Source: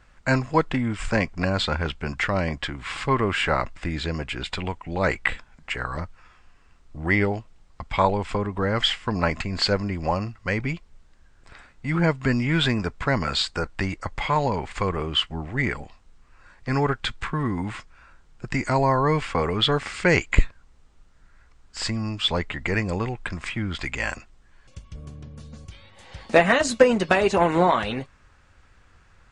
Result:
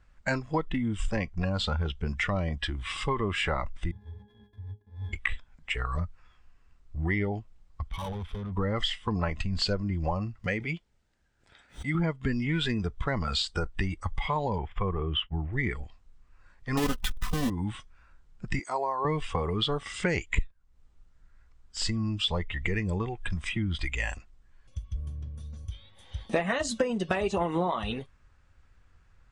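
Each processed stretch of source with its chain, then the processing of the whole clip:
0:03.91–0:05.13: samples sorted by size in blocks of 128 samples + mains-hum notches 60/120/180/240/300/360/420/480/540 Hz + resonances in every octave G#, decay 0.23 s
0:07.89–0:08.52: parametric band 6,700 Hz −11.5 dB 1.2 octaves + tube saturation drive 32 dB, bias 0.4 + highs frequency-modulated by the lows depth 0.24 ms
0:10.44–0:11.95: high-pass filter 210 Hz 6 dB per octave + notch filter 1,100 Hz, Q 5.8 + background raised ahead of every attack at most 130 dB per second
0:14.58–0:15.53: downward expander −35 dBFS + Savitzky-Golay smoothing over 25 samples
0:16.77–0:17.50: each half-wave held at its own peak + comb filter 4 ms, depth 56%
0:18.59–0:19.05: high-pass filter 450 Hz + parametric band 2,000 Hz −4.5 dB 2.9 octaves + notch filter 7,000 Hz, Q 18
whole clip: noise reduction from a noise print of the clip's start 11 dB; low-shelf EQ 130 Hz +9 dB; downward compressor 4 to 1, threshold −26 dBFS

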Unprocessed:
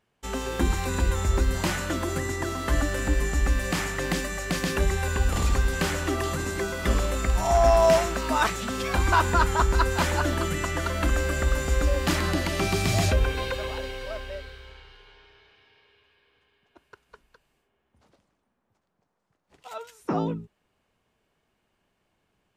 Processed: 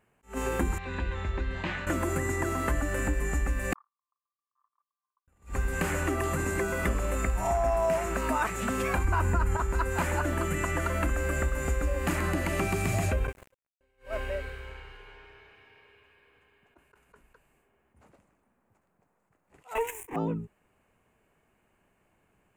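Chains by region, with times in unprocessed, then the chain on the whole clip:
0:00.78–0:01.87: transistor ladder low-pass 4,100 Hz, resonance 60% + parametric band 1,600 Hz +4.5 dB 0.6 octaves + notch filter 1,400 Hz, Q 10
0:03.73–0:05.28: mu-law and A-law mismatch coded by mu + flat-topped band-pass 1,100 Hz, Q 6.3 + noise gate −38 dBFS, range −54 dB
0:09.04–0:09.57: low-shelf EQ 200 Hz +10 dB + notch filter 3,500 Hz, Q 8.6 + envelope flattener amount 50%
0:13.27–0:13.81: low-pass filter 12,000 Hz + noise gate −26 dBFS, range −22 dB + centre clipping without the shift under −44 dBFS
0:19.75–0:20.16: high-shelf EQ 9,000 Hz −2.5 dB + leveller curve on the samples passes 5 + phaser with its sweep stopped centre 910 Hz, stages 8
whole clip: flat-topped bell 4,300 Hz −11.5 dB 1.1 octaves; downward compressor 4 to 1, threshold −30 dBFS; level that may rise only so fast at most 250 dB per second; level +4 dB

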